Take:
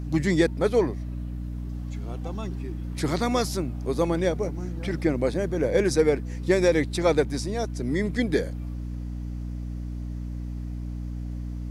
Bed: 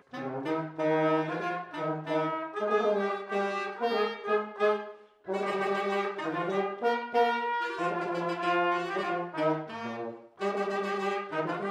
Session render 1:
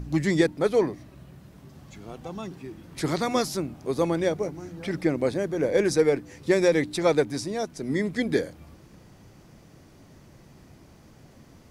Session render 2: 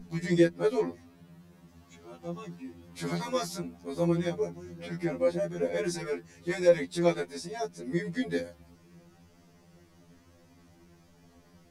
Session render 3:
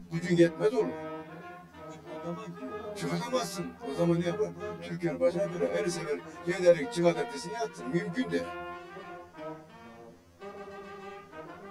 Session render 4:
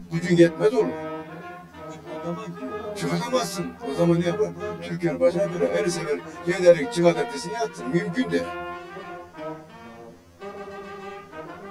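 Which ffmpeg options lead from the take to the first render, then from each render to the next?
-af "bandreject=f=60:t=h:w=4,bandreject=f=120:t=h:w=4,bandreject=f=180:t=h:w=4,bandreject=f=240:t=h:w=4,bandreject=f=300:t=h:w=4"
-af "flanger=delay=4.2:depth=3.9:regen=27:speed=0.53:shape=triangular,afftfilt=real='re*2*eq(mod(b,4),0)':imag='im*2*eq(mod(b,4),0)':win_size=2048:overlap=0.75"
-filter_complex "[1:a]volume=0.211[s0];[0:a][s0]amix=inputs=2:normalize=0"
-af "volume=2.24"

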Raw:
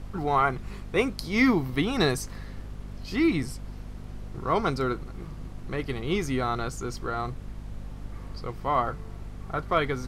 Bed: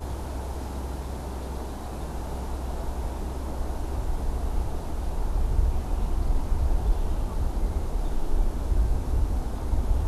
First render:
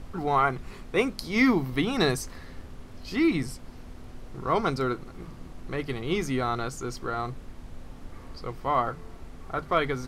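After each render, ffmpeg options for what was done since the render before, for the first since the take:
-af "bandreject=f=50:t=h:w=6,bandreject=f=100:t=h:w=6,bandreject=f=150:t=h:w=6,bandreject=f=200:t=h:w=6"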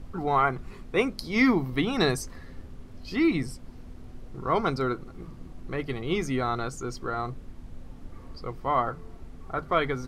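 -af "afftdn=nr=6:nf=-45"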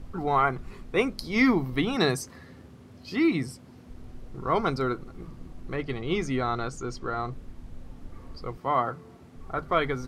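-filter_complex "[0:a]asettb=1/sr,asplit=3[s0][s1][s2];[s0]atrim=end=1.964[s3];[s1]atrim=start=1.96:end=3.9,asetpts=PTS-STARTPTS,afade=t=in:d=0.004:c=qsin,afade=t=out:st=1.936:d=0.004:c=qsin,highpass=f=86:w=0.5412,highpass=f=86:w=1.3066[s4];[s2]atrim=start=3.896[s5];[s3][s4]acrossfade=d=0.004:c1=hsin:c2=qsin[s6];[s6][s5]acrossfade=d=0.004:c1=qsin:c2=hsin,asettb=1/sr,asplit=3[s7][s8][s9];[s7]atrim=end=5.764[s10];[s8]atrim=start=5.76:end=7.32,asetpts=PTS-STARTPTS,afade=t=in:d=0.004:c=qsin,afade=t=out:st=1.556:d=0.004:c=qsin,lowpass=8000[s11];[s9]atrim=start=7.316[s12];[s10][s11]acrossfade=d=0.004:c1=hsin:c2=qsin[s13];[s13][s12]acrossfade=d=0.004:c1=qsin:c2=hsin,asettb=1/sr,asplit=3[s14][s15][s16];[s14]atrim=end=8.574[s17];[s15]atrim=start=8.57:end=9.36,asetpts=PTS-STARTPTS,afade=t=in:d=0.004:c=qsin,afade=t=out:st=0.786:d=0.004:c=qsin,highpass=f=93:w=0.5412,highpass=f=93:w=1.3066[s18];[s16]atrim=start=9.356[s19];[s17][s18]acrossfade=d=0.004:c1=hsin:c2=qsin[s20];[s20][s19]acrossfade=d=0.004:c1=qsin:c2=hsin"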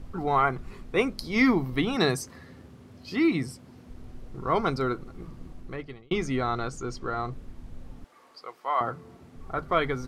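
-filter_complex "[0:a]asettb=1/sr,asplit=3[s0][s1][s2];[s0]atrim=end=8.044[s3];[s1]atrim=start=8.04:end=8.81,asetpts=PTS-STARTPTS,afade=t=in:d=0.004:c=qsin,afade=t=out:st=0.766:d=0.004:c=qsin,highpass=680[s4];[s2]atrim=start=8.806[s5];[s3][s4]acrossfade=d=0.004:c1=hsin:c2=qsin[s6];[s6][s5]acrossfade=d=0.004:c1=qsin:c2=hsin,asplit=2[s7][s8];[s7]atrim=end=6.11,asetpts=PTS-STARTPTS,afade=t=out:st=5.5:d=0.61[s9];[s8]atrim=start=6.11,asetpts=PTS-STARTPTS,afade=t=in:d=0.004:c=hsin[s10];[s9][s10]concat=n=2:v=0:a=1"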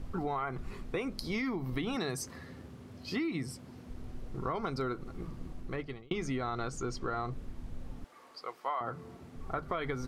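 -af "alimiter=limit=0.112:level=0:latency=1:release=115,acompressor=threshold=0.0282:ratio=6"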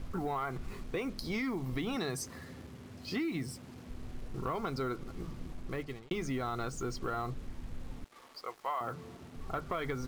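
-af "acrusher=bits=8:mix=0:aa=0.5,asoftclip=type=tanh:threshold=0.0631"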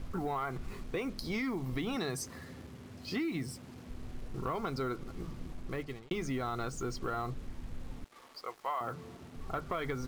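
-af anull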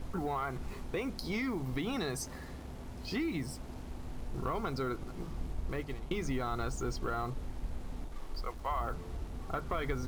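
-filter_complex "[1:a]volume=0.15[s0];[0:a][s0]amix=inputs=2:normalize=0"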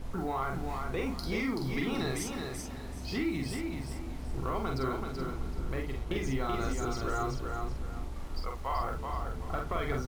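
-filter_complex "[0:a]asplit=2[s0][s1];[s1]adelay=45,volume=0.668[s2];[s0][s2]amix=inputs=2:normalize=0,aecho=1:1:381|762|1143|1524:0.562|0.157|0.0441|0.0123"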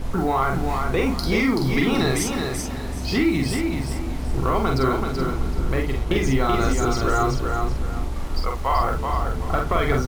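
-af "volume=3.98"

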